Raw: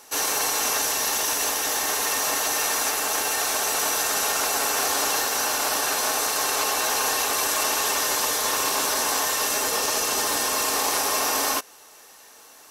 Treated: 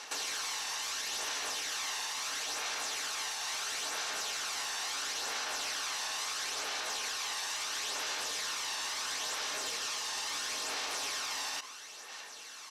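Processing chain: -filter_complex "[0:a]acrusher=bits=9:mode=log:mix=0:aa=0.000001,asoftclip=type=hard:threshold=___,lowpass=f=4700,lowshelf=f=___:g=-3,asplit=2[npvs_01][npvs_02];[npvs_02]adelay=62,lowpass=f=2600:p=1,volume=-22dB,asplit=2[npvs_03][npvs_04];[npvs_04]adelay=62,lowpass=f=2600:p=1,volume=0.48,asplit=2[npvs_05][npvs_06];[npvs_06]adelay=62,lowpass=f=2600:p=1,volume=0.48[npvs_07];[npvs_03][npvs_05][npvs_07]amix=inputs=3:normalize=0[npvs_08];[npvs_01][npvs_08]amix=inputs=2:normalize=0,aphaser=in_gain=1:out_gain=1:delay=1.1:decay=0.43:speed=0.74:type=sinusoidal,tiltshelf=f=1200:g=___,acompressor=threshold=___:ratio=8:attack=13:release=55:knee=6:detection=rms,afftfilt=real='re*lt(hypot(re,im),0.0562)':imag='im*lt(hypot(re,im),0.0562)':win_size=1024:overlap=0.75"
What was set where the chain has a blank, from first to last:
-23dB, 170, -8.5, -35dB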